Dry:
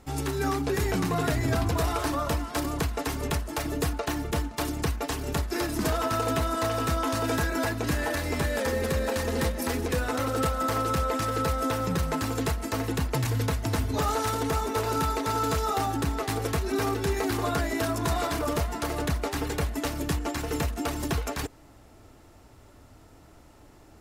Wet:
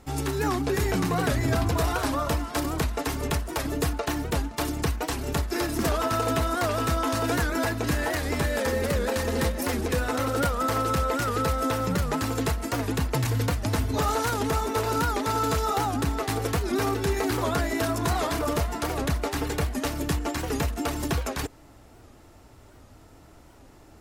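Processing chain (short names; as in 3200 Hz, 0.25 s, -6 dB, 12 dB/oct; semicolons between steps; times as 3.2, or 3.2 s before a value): record warp 78 rpm, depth 160 cents; gain +1.5 dB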